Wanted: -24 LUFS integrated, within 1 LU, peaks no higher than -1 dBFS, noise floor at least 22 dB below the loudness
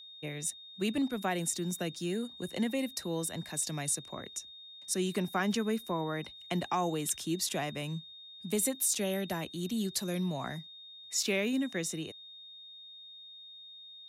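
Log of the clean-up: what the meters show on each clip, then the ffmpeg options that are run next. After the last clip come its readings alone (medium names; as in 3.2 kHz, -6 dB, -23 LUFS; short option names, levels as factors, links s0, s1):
steady tone 3.7 kHz; tone level -48 dBFS; loudness -33.5 LUFS; peak level -18.5 dBFS; loudness target -24.0 LUFS
-> -af "bandreject=f=3700:w=30"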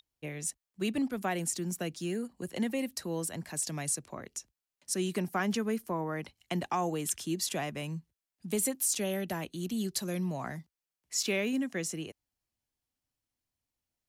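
steady tone not found; loudness -34.0 LUFS; peak level -19.0 dBFS; loudness target -24.0 LUFS
-> -af "volume=3.16"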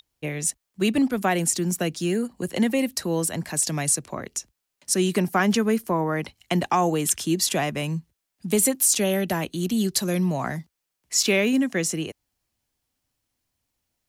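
loudness -24.0 LUFS; peak level -9.0 dBFS; noise floor -81 dBFS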